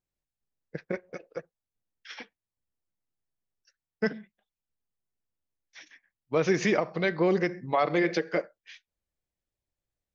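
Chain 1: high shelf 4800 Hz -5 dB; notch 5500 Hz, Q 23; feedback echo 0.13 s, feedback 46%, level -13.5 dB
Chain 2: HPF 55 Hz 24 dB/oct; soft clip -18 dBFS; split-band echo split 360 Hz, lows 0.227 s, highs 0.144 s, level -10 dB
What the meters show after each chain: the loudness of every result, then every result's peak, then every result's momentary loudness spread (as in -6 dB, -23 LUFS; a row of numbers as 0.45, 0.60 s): -28.0, -30.0 LUFS; -12.5, -16.5 dBFS; 20, 18 LU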